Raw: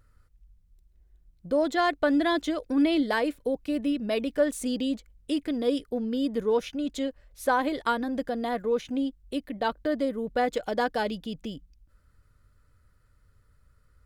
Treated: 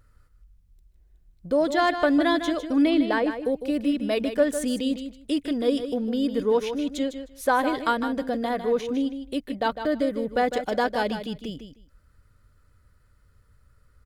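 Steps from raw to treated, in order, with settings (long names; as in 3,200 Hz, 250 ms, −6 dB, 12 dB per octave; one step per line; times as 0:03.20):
0:02.89–0:03.38: low-pass filter 3,800 Hz → 1,600 Hz 6 dB per octave
repeating echo 154 ms, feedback 16%, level −9.5 dB
level +2.5 dB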